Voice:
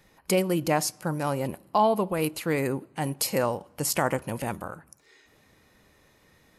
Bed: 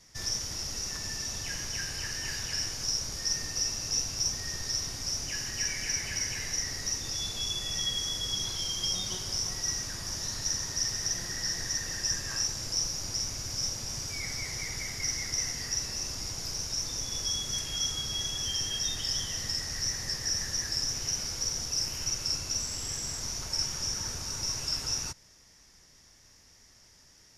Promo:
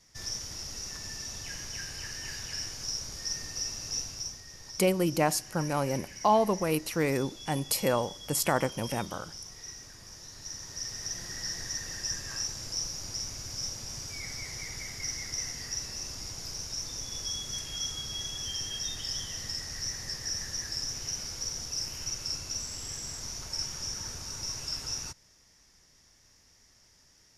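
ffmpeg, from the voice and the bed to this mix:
-filter_complex "[0:a]adelay=4500,volume=-1.5dB[a];[1:a]volume=5dB,afade=t=out:st=3.98:d=0.47:silence=0.375837,afade=t=in:st=10.32:d=1.06:silence=0.354813[b];[a][b]amix=inputs=2:normalize=0"

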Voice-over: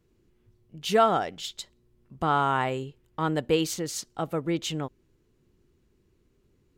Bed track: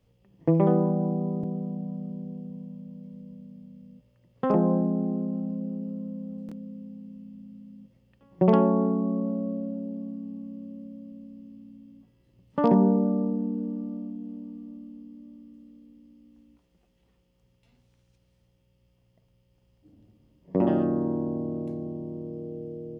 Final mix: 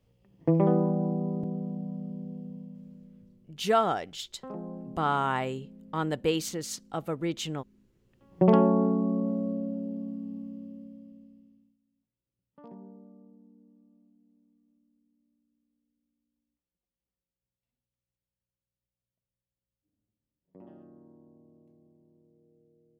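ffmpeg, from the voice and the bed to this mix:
-filter_complex "[0:a]adelay=2750,volume=-3dB[a];[1:a]volume=14.5dB,afade=t=out:st=2.49:d=0.91:silence=0.177828,afade=t=in:st=7.9:d=0.48:silence=0.149624,afade=t=out:st=10.37:d=1.4:silence=0.0421697[b];[a][b]amix=inputs=2:normalize=0"

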